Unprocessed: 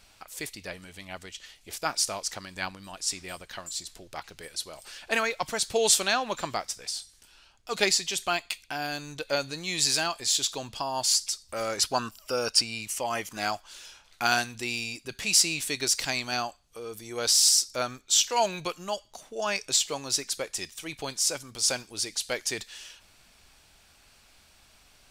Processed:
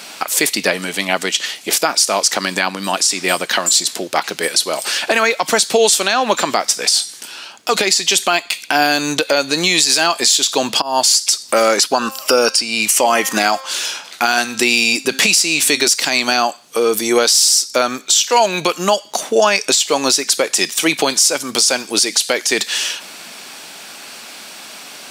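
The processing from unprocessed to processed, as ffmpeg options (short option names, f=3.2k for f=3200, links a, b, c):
-filter_complex "[0:a]asplit=3[a][b][c];[a]afade=t=out:st=12:d=0.02[d];[b]bandreject=f=265.8:t=h:w=4,bandreject=f=531.6:t=h:w=4,bandreject=f=797.4:t=h:w=4,bandreject=f=1.0632k:t=h:w=4,bandreject=f=1.329k:t=h:w=4,bandreject=f=1.5948k:t=h:w=4,bandreject=f=1.8606k:t=h:w=4,bandreject=f=2.1264k:t=h:w=4,bandreject=f=2.3922k:t=h:w=4,bandreject=f=2.658k:t=h:w=4,bandreject=f=2.9238k:t=h:w=4,bandreject=f=3.1896k:t=h:w=4,bandreject=f=3.4554k:t=h:w=4,bandreject=f=3.7212k:t=h:w=4,bandreject=f=3.987k:t=h:w=4,bandreject=f=4.2528k:t=h:w=4,bandreject=f=4.5186k:t=h:w=4,bandreject=f=4.7844k:t=h:w=4,bandreject=f=5.0502k:t=h:w=4,bandreject=f=5.316k:t=h:w=4,bandreject=f=5.5818k:t=h:w=4,bandreject=f=5.8476k:t=h:w=4,bandreject=f=6.1134k:t=h:w=4,bandreject=f=6.3792k:t=h:w=4,bandreject=f=6.645k:t=h:w=4,bandreject=f=6.9108k:t=h:w=4,bandreject=f=7.1766k:t=h:w=4,bandreject=f=7.4424k:t=h:w=4,bandreject=f=7.7082k:t=h:w=4,bandreject=f=7.974k:t=h:w=4,bandreject=f=8.2398k:t=h:w=4,bandreject=f=8.5056k:t=h:w=4,bandreject=f=8.7714k:t=h:w=4,bandreject=f=9.0372k:t=h:w=4,afade=t=in:st=12:d=0.02,afade=t=out:st=15.87:d=0.02[e];[c]afade=t=in:st=15.87:d=0.02[f];[d][e][f]amix=inputs=3:normalize=0,asplit=2[g][h];[g]atrim=end=10.82,asetpts=PTS-STARTPTS,afade=t=out:st=10.816:d=0.004:c=hsin:silence=0.112202[i];[h]atrim=start=10.82,asetpts=PTS-STARTPTS,afade=t=in:d=0.51:silence=0.112202[j];[i][j]concat=n=2:v=0:a=1,acompressor=threshold=-34dB:ratio=6,highpass=f=200:w=0.5412,highpass=f=200:w=1.3066,alimiter=level_in=26dB:limit=-1dB:release=50:level=0:latency=1,volume=-1dB"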